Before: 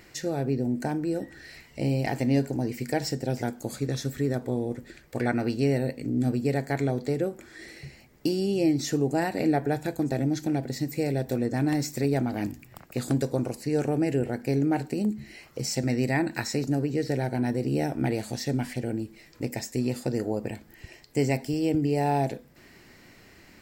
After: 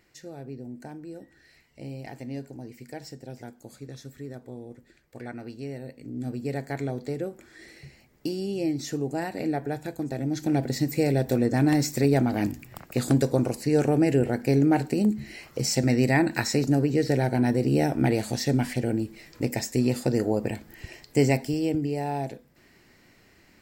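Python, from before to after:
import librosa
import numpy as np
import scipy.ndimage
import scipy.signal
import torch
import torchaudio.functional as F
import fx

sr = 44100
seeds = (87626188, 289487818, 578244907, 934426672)

y = fx.gain(x, sr, db=fx.line((5.79, -12.0), (6.56, -4.0), (10.19, -4.0), (10.59, 4.0), (21.26, 4.0), (22.06, -5.0)))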